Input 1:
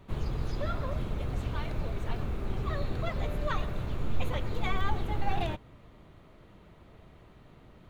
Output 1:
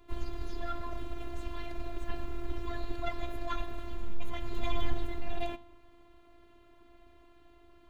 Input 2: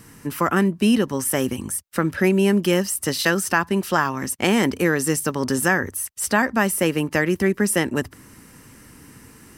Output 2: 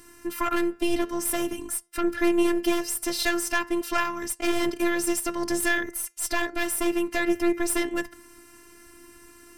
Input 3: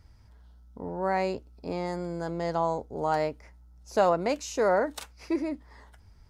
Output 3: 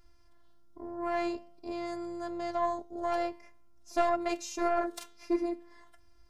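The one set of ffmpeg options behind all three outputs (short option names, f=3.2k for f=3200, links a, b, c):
-af "flanger=delay=6.2:depth=5.4:regen=89:speed=0.48:shape=triangular,aeval=exprs='0.422*(cos(1*acos(clip(val(0)/0.422,-1,1)))-cos(1*PI/2))+0.133*(cos(4*acos(clip(val(0)/0.422,-1,1)))-cos(4*PI/2))+0.0668*(cos(5*acos(clip(val(0)/0.422,-1,1)))-cos(5*PI/2))+0.00596*(cos(6*acos(clip(val(0)/0.422,-1,1)))-cos(6*PI/2))+0.00531*(cos(7*acos(clip(val(0)/0.422,-1,1)))-cos(7*PI/2))':c=same,afftfilt=real='hypot(re,im)*cos(PI*b)':imag='0':win_size=512:overlap=0.75"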